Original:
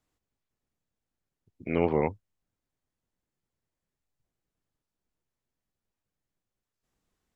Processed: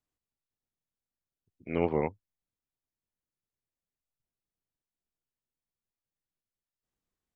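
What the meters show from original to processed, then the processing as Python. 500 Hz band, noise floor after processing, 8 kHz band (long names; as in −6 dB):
−3.0 dB, below −85 dBFS, can't be measured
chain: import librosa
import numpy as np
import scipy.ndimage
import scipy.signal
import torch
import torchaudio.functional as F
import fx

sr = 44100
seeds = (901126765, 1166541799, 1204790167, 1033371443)

y = fx.upward_expand(x, sr, threshold_db=-39.0, expansion=1.5)
y = y * 10.0 ** (-2.0 / 20.0)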